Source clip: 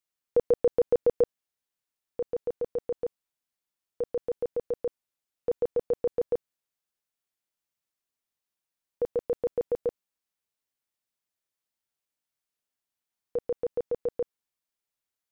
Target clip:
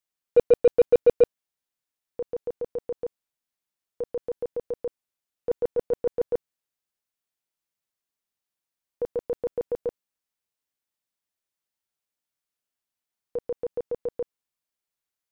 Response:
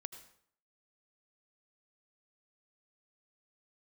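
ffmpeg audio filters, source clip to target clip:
-af "agate=range=-8dB:threshold=-24dB:ratio=16:detection=peak,aeval=exprs='0.178*(cos(1*acos(clip(val(0)/0.178,-1,1)))-cos(1*PI/2))+0.00501*(cos(5*acos(clip(val(0)/0.178,-1,1)))-cos(5*PI/2))+0.00141*(cos(8*acos(clip(val(0)/0.178,-1,1)))-cos(8*PI/2))':c=same,volume=6.5dB"

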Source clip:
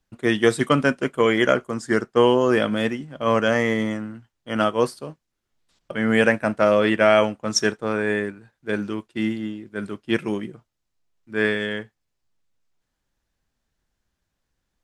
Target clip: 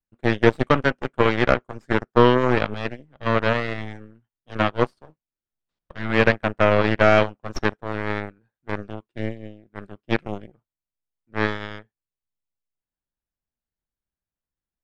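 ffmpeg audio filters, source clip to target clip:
-filter_complex "[0:a]aeval=exprs='0.794*(cos(1*acos(clip(val(0)/0.794,-1,1)))-cos(1*PI/2))+0.1*(cos(7*acos(clip(val(0)/0.794,-1,1)))-cos(7*PI/2))+0.0708*(cos(8*acos(clip(val(0)/0.794,-1,1)))-cos(8*PI/2))':c=same,aemphasis=mode=reproduction:type=75fm,acrossover=split=5100[a][b];[b]acompressor=threshold=-53dB:ratio=4:attack=1:release=60[c];[a][c]amix=inputs=2:normalize=0,volume=1.5dB"

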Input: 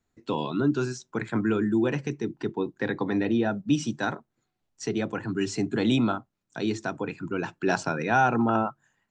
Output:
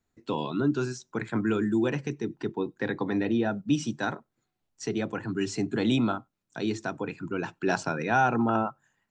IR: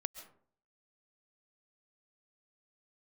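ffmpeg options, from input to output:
-filter_complex "[0:a]asettb=1/sr,asplit=3[a][b][c];[a]atrim=end=1.474[d];[b]atrim=start=1.47:end=1.9,asetpts=PTS-STARTPTS,afade=t=in:d=0.004:c=qsin,afade=t=out:st=0.426:d=0.004:c=qsin,highshelf=f=4.8k:g=9[e];[c]atrim=start=1.896[f];[d][e]acrossfade=d=0.004:c1=hsin:c2=qsin[g];[g][f]acrossfade=d=0.004:c1=qsin:c2=hsin[h];[1:a]atrim=start_sample=2205,atrim=end_sample=4410[i];[h][i]afir=irnorm=-1:irlink=0"

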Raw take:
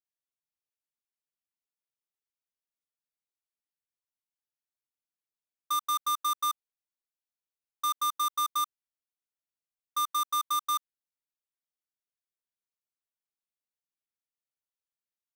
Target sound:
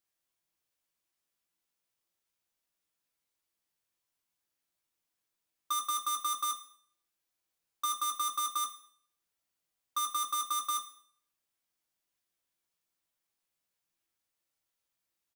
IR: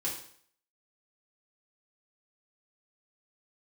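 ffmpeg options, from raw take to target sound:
-filter_complex "[0:a]alimiter=level_in=12.5dB:limit=-24dB:level=0:latency=1:release=21,volume=-12.5dB,asplit=2[a][b];[b]adelay=18,volume=-7dB[c];[a][c]amix=inputs=2:normalize=0,asplit=2[d][e];[1:a]atrim=start_sample=2205[f];[e][f]afir=irnorm=-1:irlink=0,volume=-8.5dB[g];[d][g]amix=inputs=2:normalize=0,volume=5.5dB"

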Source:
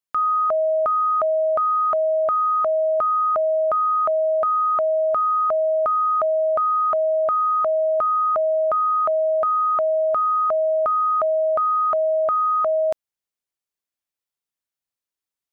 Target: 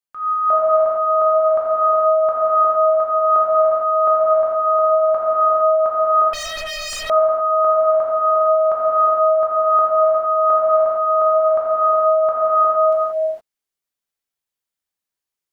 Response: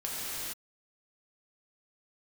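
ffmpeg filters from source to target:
-filter_complex "[0:a]tremolo=f=3.9:d=0.72[a];[1:a]atrim=start_sample=2205[b];[a][b]afir=irnorm=-1:irlink=0,asettb=1/sr,asplit=3[c][d][e];[c]atrim=end=6.334[f];[d]atrim=start=6.33:end=7.1,asetpts=PTS-STARTPTS,afade=t=in:d=0.004:c=qsin,afade=t=out:st=0.766:d=0.004:c=qsin,aeval=exprs='0.075*(abs(mod(val(0)/0.075+3,4)-2)-1)':c=same[g];[e]atrim=start=7.096[h];[f][g]acrossfade=d=0.004:c1=hsin:c2=qsin[i];[i][h]acrossfade=d=0.004:c1=qsin:c2=hsin"

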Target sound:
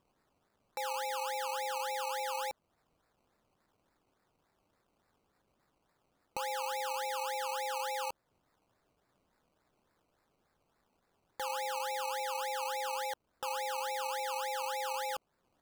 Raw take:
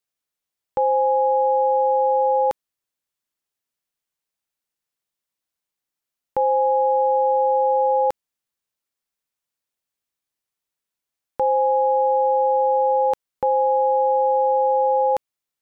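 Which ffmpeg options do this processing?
-filter_complex "[0:a]aderivative,asplit=2[a][b];[b]acompressor=threshold=-49dB:ratio=6,volume=0dB[c];[a][c]amix=inputs=2:normalize=0,acrusher=samples=20:mix=1:aa=0.000001:lfo=1:lforange=12:lforate=3.5"

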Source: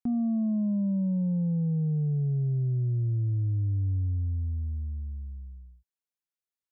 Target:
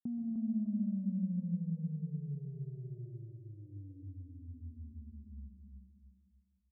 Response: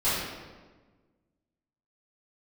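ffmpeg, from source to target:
-filter_complex "[0:a]asplit=3[a][b][c];[a]afade=t=out:st=2.01:d=0.02[d];[b]aecho=1:1:4.7:0.86,afade=t=in:st=2.01:d=0.02,afade=t=out:st=4.04:d=0.02[e];[c]afade=t=in:st=4.04:d=0.02[f];[d][e][f]amix=inputs=3:normalize=0,acompressor=threshold=-38dB:ratio=6,bandpass=f=210:t=q:w=2.1:csg=0,aecho=1:1:304|608|912|1216:0.562|0.202|0.0729|0.0262,asplit=2[g][h];[1:a]atrim=start_sample=2205,adelay=113[i];[h][i]afir=irnorm=-1:irlink=0,volume=-19dB[j];[g][j]amix=inputs=2:normalize=0,volume=1dB"

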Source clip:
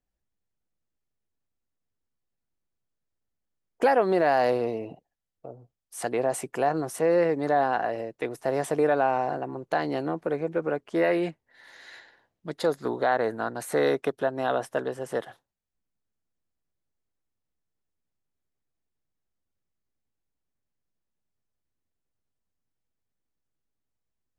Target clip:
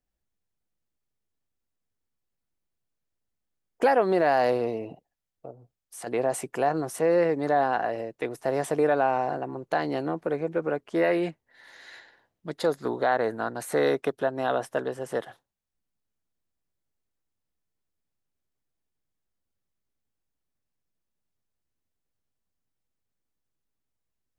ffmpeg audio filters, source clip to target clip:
-filter_complex "[0:a]asplit=3[a][b][c];[a]afade=t=out:st=5.5:d=0.02[d];[b]acompressor=threshold=-43dB:ratio=2,afade=t=in:st=5.5:d=0.02,afade=t=out:st=6.06:d=0.02[e];[c]afade=t=in:st=6.06:d=0.02[f];[d][e][f]amix=inputs=3:normalize=0"

